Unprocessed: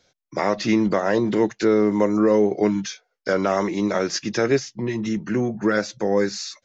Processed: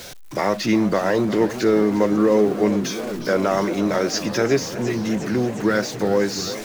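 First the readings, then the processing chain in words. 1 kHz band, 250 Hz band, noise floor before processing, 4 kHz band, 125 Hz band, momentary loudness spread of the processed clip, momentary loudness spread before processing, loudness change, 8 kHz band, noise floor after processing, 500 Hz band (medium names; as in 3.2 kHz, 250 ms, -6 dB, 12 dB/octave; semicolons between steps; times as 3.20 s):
+1.5 dB, +1.0 dB, -74 dBFS, +3.0 dB, +2.0 dB, 6 LU, 8 LU, +1.0 dB, no reading, -35 dBFS, +1.0 dB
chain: jump at every zero crossing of -32 dBFS; modulated delay 358 ms, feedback 80%, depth 129 cents, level -14 dB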